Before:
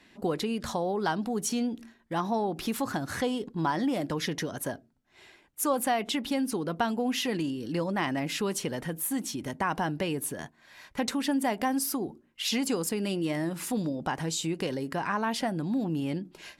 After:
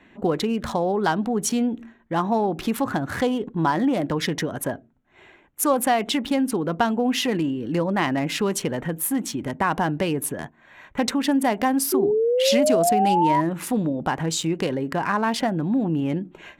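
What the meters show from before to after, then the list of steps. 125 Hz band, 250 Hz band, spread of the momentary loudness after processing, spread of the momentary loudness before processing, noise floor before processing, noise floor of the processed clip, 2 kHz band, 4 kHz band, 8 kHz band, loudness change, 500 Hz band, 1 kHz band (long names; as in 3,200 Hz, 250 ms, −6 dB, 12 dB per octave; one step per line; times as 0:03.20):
+7.0 dB, +7.0 dB, 8 LU, 6 LU, −62 dBFS, −55 dBFS, +6.0 dB, +5.0 dB, +5.5 dB, +7.5 dB, +9.0 dB, +8.5 dB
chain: adaptive Wiener filter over 9 samples
sound drawn into the spectrogram rise, 0:11.92–0:13.41, 370–1,000 Hz −27 dBFS
level +7 dB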